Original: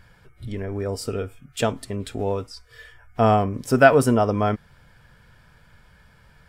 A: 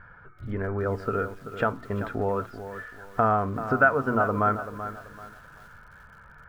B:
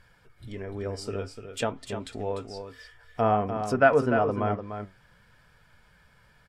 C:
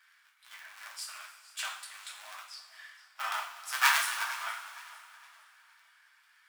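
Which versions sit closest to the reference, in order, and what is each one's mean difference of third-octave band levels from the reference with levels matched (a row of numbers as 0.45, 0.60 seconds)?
B, A, C; 4.0, 7.0, 21.0 decibels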